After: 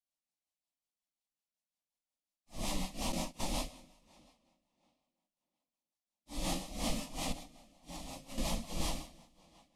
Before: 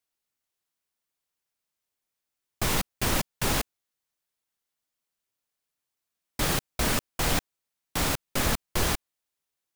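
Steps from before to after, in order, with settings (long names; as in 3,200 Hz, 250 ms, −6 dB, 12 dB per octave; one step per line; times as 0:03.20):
random phases in long frames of 200 ms
high-shelf EQ 5,800 Hz −6 dB
tape delay 673 ms, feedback 24%, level −23.5 dB, low-pass 5,100 Hz
coupled-rooms reverb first 0.84 s, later 2.2 s, from −17 dB, DRR 12.5 dB
rotating-speaker cabinet horn 5.5 Hz
low-pass filter 12,000 Hz 24 dB per octave
phaser with its sweep stopped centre 410 Hz, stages 6
0:03.12–0:03.56: noise gate −38 dBFS, range −12 dB
0:07.32–0:08.38: downward compressor 3 to 1, threshold −42 dBFS, peak gain reduction 12 dB
level −3.5 dB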